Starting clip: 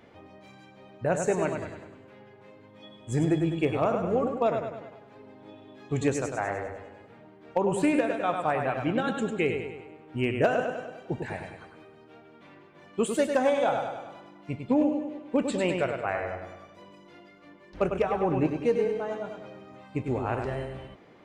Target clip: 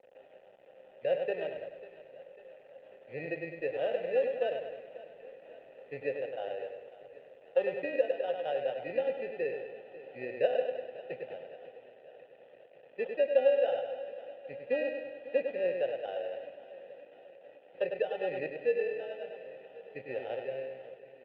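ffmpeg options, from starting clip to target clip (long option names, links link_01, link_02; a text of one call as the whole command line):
ffmpeg -i in.wav -filter_complex "[0:a]lowshelf=frequency=410:gain=8,acrusher=samples=20:mix=1:aa=0.000001,aeval=exprs='val(0)+0.00355*(sin(2*PI*60*n/s)+sin(2*PI*2*60*n/s)/2+sin(2*PI*3*60*n/s)/3+sin(2*PI*4*60*n/s)/4+sin(2*PI*5*60*n/s)/5)':channel_layout=same,acrusher=bits=6:mix=0:aa=0.000001,asplit=3[link_01][link_02][link_03];[link_01]bandpass=frequency=530:width_type=q:width=8,volume=0dB[link_04];[link_02]bandpass=frequency=1840:width_type=q:width=8,volume=-6dB[link_05];[link_03]bandpass=frequency=2480:width_type=q:width=8,volume=-9dB[link_06];[link_04][link_05][link_06]amix=inputs=3:normalize=0,highpass=frequency=120:width=0.5412,highpass=frequency=120:width=1.3066,equalizer=frequency=210:width_type=q:width=4:gain=-7,equalizer=frequency=310:width_type=q:width=4:gain=-7,equalizer=frequency=780:width_type=q:width=4:gain=8,equalizer=frequency=1700:width_type=q:width=4:gain=-8,lowpass=frequency=3200:width=0.5412,lowpass=frequency=3200:width=1.3066,asplit=2[link_07][link_08];[link_08]aecho=0:1:545|1090|1635|2180|2725:0.141|0.0805|0.0459|0.0262|0.0149[link_09];[link_07][link_09]amix=inputs=2:normalize=0" -ar 48000 -c:a libopus -b:a 32k out.opus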